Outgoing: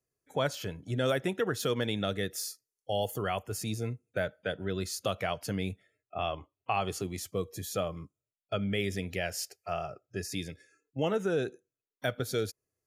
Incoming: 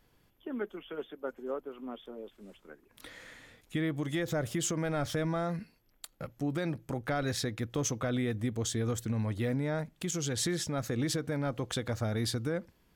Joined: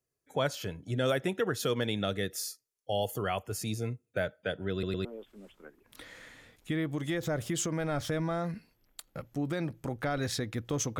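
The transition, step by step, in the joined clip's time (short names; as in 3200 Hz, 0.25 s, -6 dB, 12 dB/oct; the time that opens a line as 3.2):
outgoing
4.72 stutter in place 0.11 s, 3 plays
5.05 switch to incoming from 2.1 s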